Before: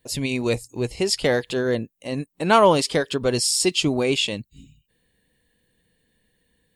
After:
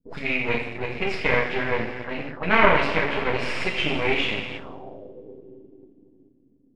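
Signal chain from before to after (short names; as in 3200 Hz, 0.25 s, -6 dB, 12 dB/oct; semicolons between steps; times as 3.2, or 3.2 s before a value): two-slope reverb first 0.59 s, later 4.2 s, from -15 dB, DRR -7 dB; half-wave rectifier; envelope low-pass 270–2300 Hz up, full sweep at -20.5 dBFS; gain -7 dB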